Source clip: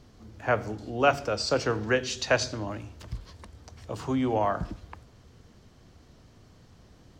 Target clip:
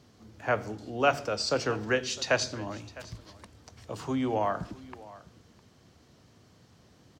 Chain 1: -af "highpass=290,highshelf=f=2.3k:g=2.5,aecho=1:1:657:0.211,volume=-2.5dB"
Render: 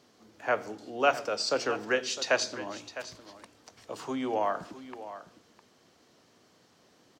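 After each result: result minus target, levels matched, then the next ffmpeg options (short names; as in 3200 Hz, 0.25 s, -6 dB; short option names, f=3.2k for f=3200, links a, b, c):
125 Hz band -12.5 dB; echo-to-direct +6 dB
-af "highpass=95,highshelf=f=2.3k:g=2.5,aecho=1:1:657:0.211,volume=-2.5dB"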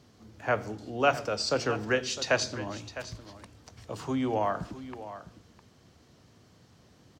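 echo-to-direct +6 dB
-af "highpass=95,highshelf=f=2.3k:g=2.5,aecho=1:1:657:0.106,volume=-2.5dB"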